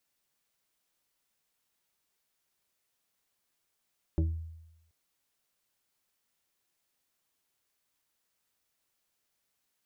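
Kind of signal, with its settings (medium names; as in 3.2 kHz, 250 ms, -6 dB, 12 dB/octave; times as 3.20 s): FM tone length 0.73 s, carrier 81.3 Hz, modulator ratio 2.98, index 1.1, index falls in 0.35 s exponential, decay 0.93 s, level -22 dB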